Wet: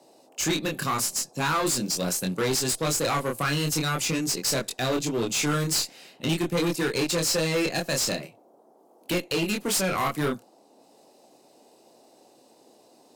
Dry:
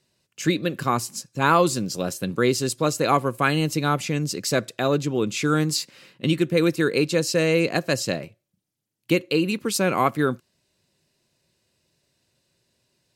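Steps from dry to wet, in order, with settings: high-pass 130 Hz 24 dB/octave; treble shelf 3.3 kHz +11 dB; transient shaper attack +1 dB, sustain -5 dB; in parallel at +2 dB: peak limiter -11.5 dBFS, peak gain reduction 9 dB; on the sum: one-sided clip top -16 dBFS; chorus 0.44 Hz, depth 5.3 ms; saturation -15.5 dBFS, distortion -13 dB; band noise 230–820 Hz -54 dBFS; trim -3.5 dB

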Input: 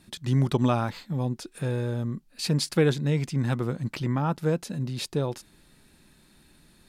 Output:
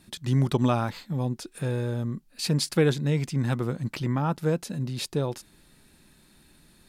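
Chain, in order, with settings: treble shelf 9.2 kHz +3.5 dB

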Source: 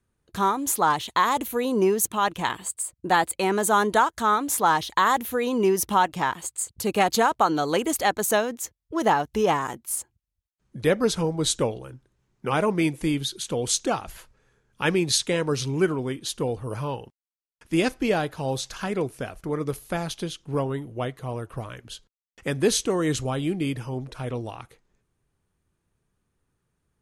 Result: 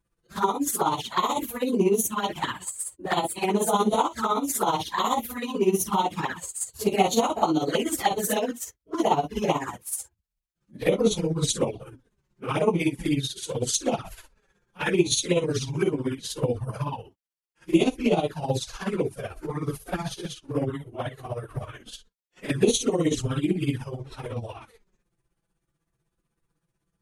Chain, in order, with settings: phase randomisation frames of 100 ms; tremolo 16 Hz, depth 65%; touch-sensitive flanger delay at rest 6 ms, full sweep at -22 dBFS; trim +4 dB

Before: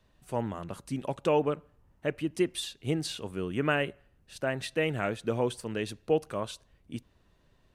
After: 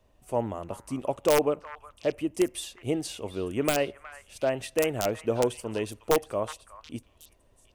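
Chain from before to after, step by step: integer overflow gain 16 dB; fifteen-band graphic EQ 160 Hz -9 dB, 630 Hz +4 dB, 1.6 kHz -8 dB, 4 kHz -8 dB; repeats whose band climbs or falls 365 ms, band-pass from 1.4 kHz, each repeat 1.4 oct, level -9 dB; trim +3 dB

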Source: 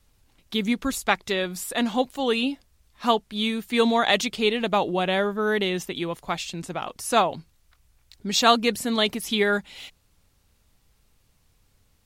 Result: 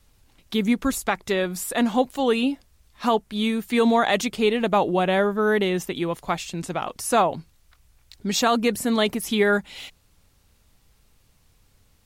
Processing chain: dynamic bell 3.8 kHz, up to -7 dB, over -40 dBFS, Q 0.85; loudness maximiser +12 dB; trim -8.5 dB

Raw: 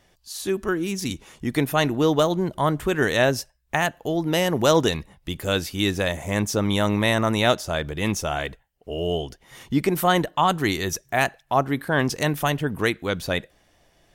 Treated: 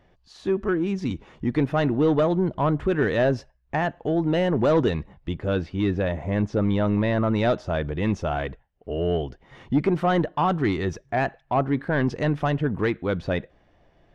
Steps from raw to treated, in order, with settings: saturation -15 dBFS, distortion -13 dB; tape spacing loss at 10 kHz 34 dB, from 5.33 s at 10 kHz 45 dB, from 7.34 s at 10 kHz 34 dB; trim +3.5 dB

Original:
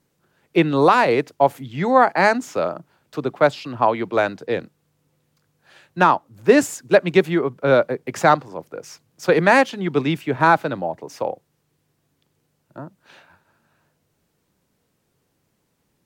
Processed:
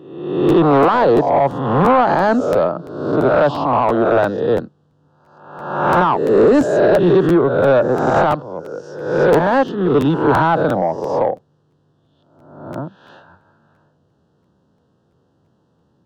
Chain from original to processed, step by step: reverse spectral sustain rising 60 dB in 0.93 s; high-pass 69 Hz 24 dB/octave; peak limiter -7 dBFS, peak gain reduction 8 dB; Butterworth band-stop 2.2 kHz, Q 1.7; saturation -13.5 dBFS, distortion -14 dB; tape spacing loss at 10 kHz 28 dB; crackling interface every 0.34 s, samples 512, repeat, from 0.48 s; 8.24–10.25 s: upward expansion 1.5:1, over -28 dBFS; trim +8.5 dB

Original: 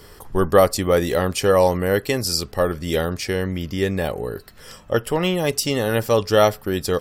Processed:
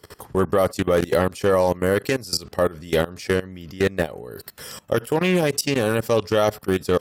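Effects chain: 4.31–5.23 s: treble shelf 9 kHz +11.5 dB; level held to a coarse grid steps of 22 dB; peak limiter -17.5 dBFS, peak gain reduction 8 dB; high-pass 88 Hz 12 dB/octave; loudspeaker Doppler distortion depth 0.21 ms; trim +8 dB

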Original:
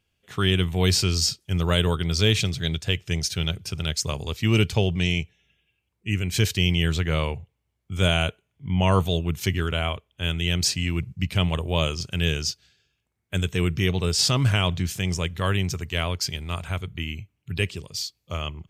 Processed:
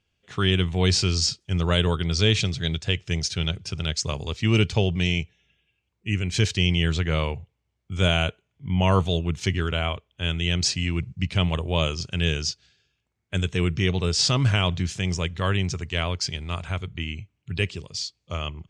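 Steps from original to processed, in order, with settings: low-pass 7.6 kHz 24 dB/octave

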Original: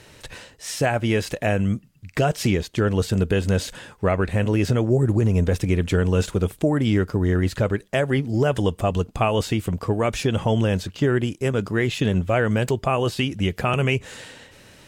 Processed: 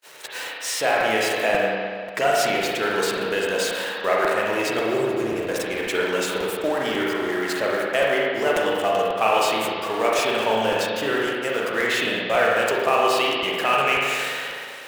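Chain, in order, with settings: jump at every zero crossing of -29 dBFS; high-pass 570 Hz 12 dB/octave; gate -33 dBFS, range -45 dB; reverberation RT60 2.0 s, pre-delay 36 ms, DRR -4 dB; crackling interface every 0.54 s, samples 256, repeat, from 0.46 s

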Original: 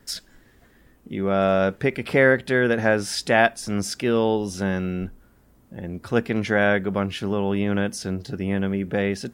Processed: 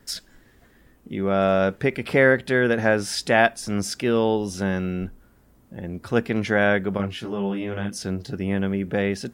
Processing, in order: 6.97–7.96 s: detune thickener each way 18 cents

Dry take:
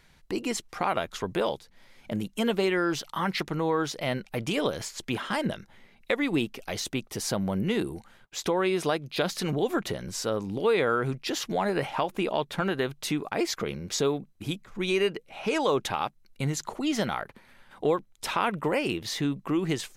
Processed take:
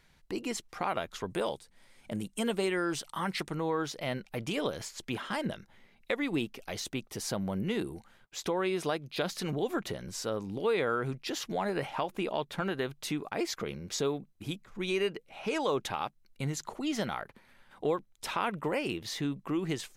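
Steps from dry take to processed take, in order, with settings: 1.30–3.55 s: peaking EQ 8.7 kHz +11.5 dB 0.39 oct; trim -5 dB

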